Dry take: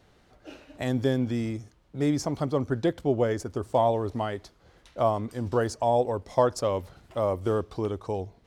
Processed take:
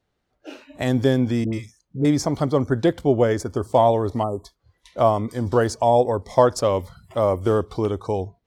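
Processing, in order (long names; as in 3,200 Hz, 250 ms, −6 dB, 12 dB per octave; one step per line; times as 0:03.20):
0:01.44–0:02.05: all-pass dispersion highs, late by 90 ms, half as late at 810 Hz
0:04.23–0:04.45: time-frequency box erased 1,300–6,900 Hz
noise reduction from a noise print of the clip's start 21 dB
level +6.5 dB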